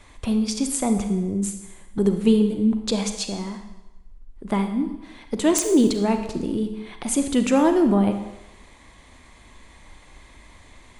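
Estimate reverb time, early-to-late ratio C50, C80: 1.0 s, 8.0 dB, 10.0 dB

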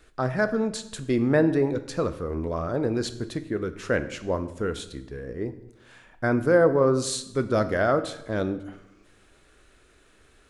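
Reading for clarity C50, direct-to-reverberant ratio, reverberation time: 13.5 dB, 10.0 dB, 0.90 s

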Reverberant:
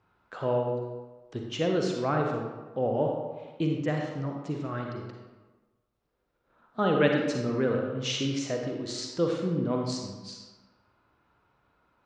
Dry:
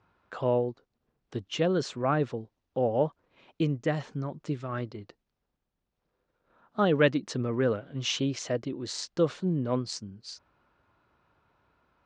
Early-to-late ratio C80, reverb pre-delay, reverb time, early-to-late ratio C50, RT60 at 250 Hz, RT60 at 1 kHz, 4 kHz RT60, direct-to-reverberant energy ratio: 4.5 dB, 38 ms, 1.3 s, 2.0 dB, 1.2 s, 1.3 s, 0.80 s, 1.0 dB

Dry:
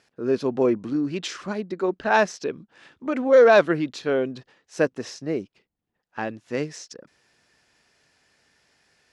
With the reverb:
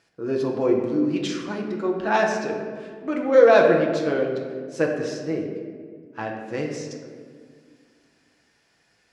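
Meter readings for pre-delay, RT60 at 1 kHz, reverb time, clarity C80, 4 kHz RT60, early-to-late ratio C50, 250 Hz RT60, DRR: 6 ms, 1.6 s, 1.8 s, 5.5 dB, 0.95 s, 4.0 dB, 2.8 s, 0.0 dB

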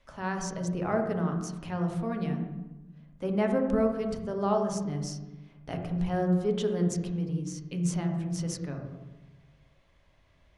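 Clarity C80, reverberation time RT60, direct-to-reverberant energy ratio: 7.5 dB, 1.1 s, 2.5 dB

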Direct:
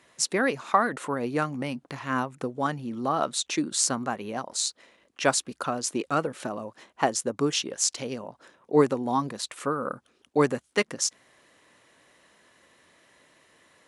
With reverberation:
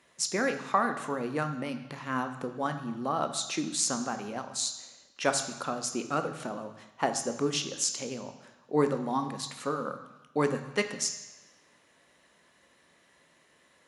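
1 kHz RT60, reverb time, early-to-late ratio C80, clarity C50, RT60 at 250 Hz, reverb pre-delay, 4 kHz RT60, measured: 1.1 s, 1.1 s, 11.5 dB, 10.0 dB, 1.0 s, 3 ms, 1.1 s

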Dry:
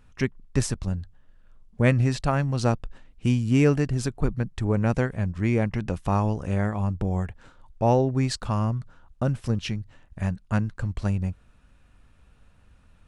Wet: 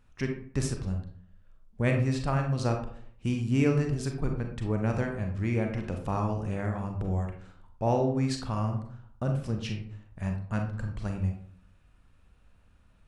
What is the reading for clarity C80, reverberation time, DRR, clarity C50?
10.0 dB, 0.60 s, 3.0 dB, 6.0 dB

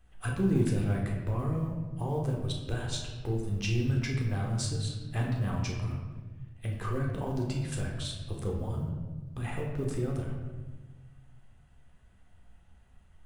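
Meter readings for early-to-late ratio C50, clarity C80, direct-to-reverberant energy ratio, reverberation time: 3.0 dB, 5.5 dB, -1.0 dB, 1.3 s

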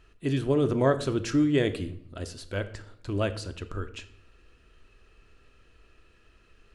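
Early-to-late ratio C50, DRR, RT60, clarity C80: 14.5 dB, 9.0 dB, 0.65 s, 17.0 dB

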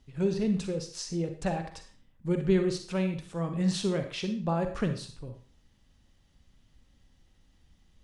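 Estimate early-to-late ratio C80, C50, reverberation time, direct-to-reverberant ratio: 12.5 dB, 8.5 dB, 0.40 s, 6.5 dB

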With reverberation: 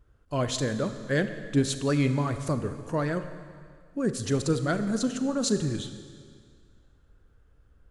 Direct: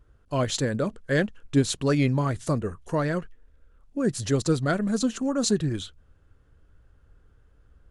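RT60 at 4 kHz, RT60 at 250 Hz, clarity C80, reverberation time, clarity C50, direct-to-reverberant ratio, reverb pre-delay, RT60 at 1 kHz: 1.9 s, 2.0 s, 11.0 dB, 2.0 s, 10.0 dB, 9.0 dB, 35 ms, 2.0 s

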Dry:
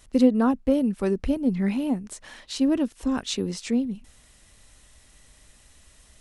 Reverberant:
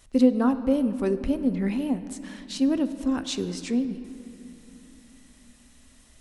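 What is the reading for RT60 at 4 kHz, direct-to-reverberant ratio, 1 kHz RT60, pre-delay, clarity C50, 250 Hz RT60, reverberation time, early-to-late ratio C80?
1.7 s, 10.5 dB, 2.7 s, 7 ms, 12.0 dB, 4.3 s, 2.9 s, 13.0 dB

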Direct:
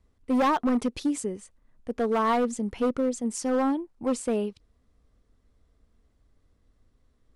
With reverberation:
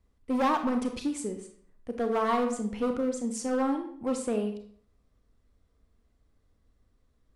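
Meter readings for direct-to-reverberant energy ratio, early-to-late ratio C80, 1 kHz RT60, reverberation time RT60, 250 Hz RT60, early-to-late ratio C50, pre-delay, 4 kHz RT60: 5.0 dB, 11.5 dB, 0.55 s, 0.55 s, 0.65 s, 8.0 dB, 28 ms, 0.45 s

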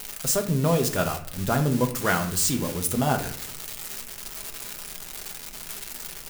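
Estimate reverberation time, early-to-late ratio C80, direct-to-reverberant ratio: 0.60 s, 14.0 dB, 3.5 dB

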